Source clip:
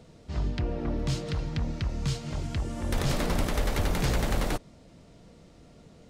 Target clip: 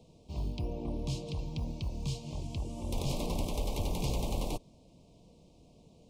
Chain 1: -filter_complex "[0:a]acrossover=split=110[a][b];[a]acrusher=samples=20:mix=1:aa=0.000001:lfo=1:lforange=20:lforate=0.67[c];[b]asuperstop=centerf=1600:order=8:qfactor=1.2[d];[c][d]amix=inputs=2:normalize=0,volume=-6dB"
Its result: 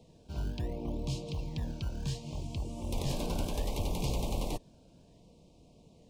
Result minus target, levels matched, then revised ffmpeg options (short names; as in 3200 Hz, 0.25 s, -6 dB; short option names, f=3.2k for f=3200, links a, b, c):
decimation with a swept rate: distortion +10 dB
-filter_complex "[0:a]acrossover=split=110[a][b];[a]acrusher=samples=7:mix=1:aa=0.000001:lfo=1:lforange=7:lforate=0.67[c];[b]asuperstop=centerf=1600:order=8:qfactor=1.2[d];[c][d]amix=inputs=2:normalize=0,volume=-6dB"